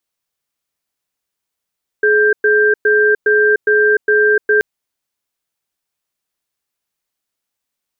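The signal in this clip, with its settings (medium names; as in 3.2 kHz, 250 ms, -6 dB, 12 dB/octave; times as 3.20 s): cadence 423 Hz, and 1.58 kHz, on 0.30 s, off 0.11 s, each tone -11.5 dBFS 2.58 s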